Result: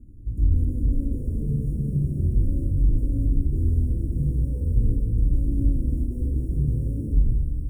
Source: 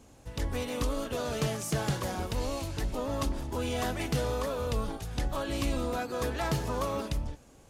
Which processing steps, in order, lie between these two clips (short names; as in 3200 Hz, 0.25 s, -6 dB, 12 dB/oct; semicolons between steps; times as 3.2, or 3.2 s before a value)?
sample sorter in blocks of 32 samples; dynamic EQ 890 Hz, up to +6 dB, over -47 dBFS, Q 0.84; limiter -25.5 dBFS, peak gain reduction 8 dB; inverse Chebyshev band-stop 730–4900 Hz, stop band 40 dB; RIAA curve playback; on a send: thinning echo 0.279 s, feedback 79%, high-pass 590 Hz, level -8.5 dB; on the sum: shoebox room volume 2300 m³, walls mixed, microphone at 2.6 m; gain -4.5 dB